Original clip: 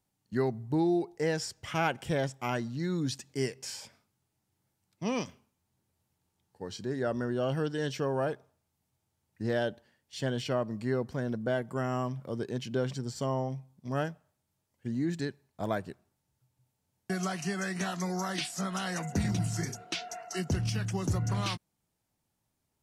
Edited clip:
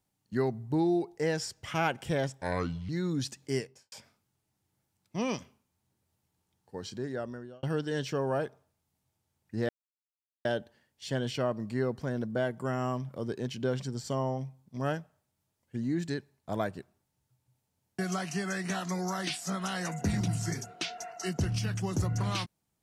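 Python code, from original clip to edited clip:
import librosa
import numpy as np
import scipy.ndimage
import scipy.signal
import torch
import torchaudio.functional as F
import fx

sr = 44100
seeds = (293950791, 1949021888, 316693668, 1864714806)

y = fx.studio_fade_out(x, sr, start_s=3.42, length_s=0.37)
y = fx.edit(y, sr, fx.speed_span(start_s=2.41, length_s=0.35, speed=0.73),
    fx.fade_out_span(start_s=6.74, length_s=0.76),
    fx.insert_silence(at_s=9.56, length_s=0.76), tone=tone)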